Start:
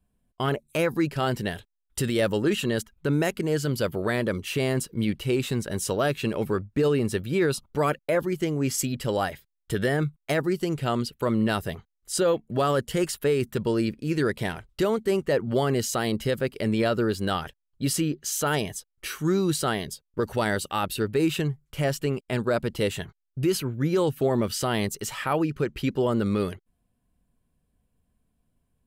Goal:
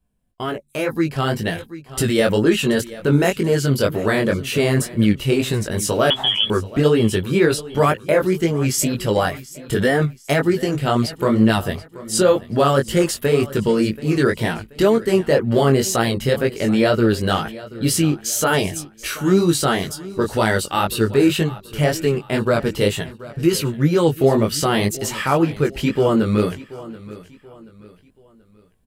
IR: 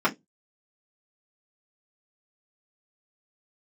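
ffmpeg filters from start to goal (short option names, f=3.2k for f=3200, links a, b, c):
-filter_complex "[0:a]flanger=delay=17.5:depth=4.8:speed=2,asettb=1/sr,asplit=3[a][b][c];[a]atrim=end=6.104[d];[b]atrim=start=6.1:end=6.5,asetpts=PTS-STARTPTS,afade=t=in:d=0.004:c=qsin,afade=t=out:st=0.396:d=0.004:c=qsin,lowpass=f=3k:t=q:w=0.5098,lowpass=f=3k:t=q:w=0.6013,lowpass=f=3k:t=q:w=0.9,lowpass=f=3k:t=q:w=2.563,afreqshift=-3500[e];[c]atrim=start=6.496[f];[d][e]acrossfade=d=0.004:c1=hsin:c2=qsin[g];[g][f]acrossfade=d=0.004:c1=qsin:c2=hsin,asplit=2[h][i];[i]aecho=0:1:731|1462|2193:0.126|0.0466|0.0172[j];[h][j]amix=inputs=2:normalize=0,dynaudnorm=f=750:g=3:m=7dB,volume=3.5dB"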